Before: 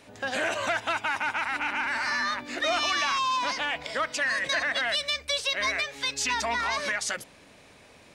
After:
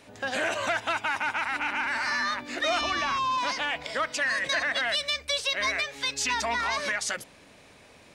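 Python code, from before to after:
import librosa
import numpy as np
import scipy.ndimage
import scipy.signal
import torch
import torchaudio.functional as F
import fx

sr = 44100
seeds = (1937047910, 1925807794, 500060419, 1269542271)

y = fx.tilt_eq(x, sr, slope=-2.5, at=(2.81, 3.38))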